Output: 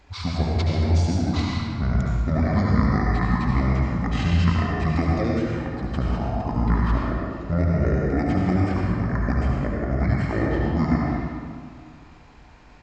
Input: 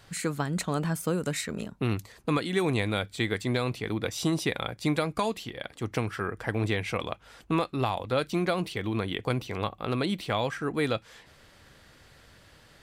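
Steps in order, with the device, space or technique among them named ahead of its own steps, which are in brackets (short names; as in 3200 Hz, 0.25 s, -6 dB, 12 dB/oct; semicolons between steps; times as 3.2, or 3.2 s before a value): monster voice (pitch shift -11 st; low shelf 200 Hz +4 dB; echo 71 ms -8.5 dB; reverb RT60 2.0 s, pre-delay 78 ms, DRR -2.5 dB)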